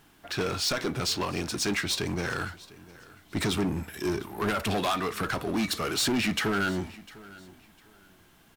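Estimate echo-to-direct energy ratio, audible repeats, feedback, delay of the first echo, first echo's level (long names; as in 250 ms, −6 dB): −20.0 dB, 2, 25%, 702 ms, −20.5 dB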